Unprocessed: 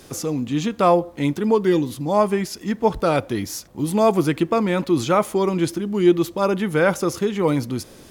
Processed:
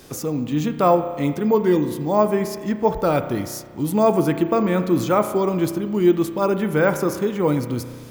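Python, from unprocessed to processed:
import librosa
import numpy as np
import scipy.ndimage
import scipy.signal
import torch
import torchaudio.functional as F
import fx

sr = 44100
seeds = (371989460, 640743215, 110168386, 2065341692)

y = fx.dynamic_eq(x, sr, hz=3500.0, q=0.75, threshold_db=-40.0, ratio=4.0, max_db=-5)
y = fx.rev_spring(y, sr, rt60_s=1.7, pass_ms=(33,), chirp_ms=75, drr_db=9.0)
y = np.repeat(y[::2], 2)[:len(y)]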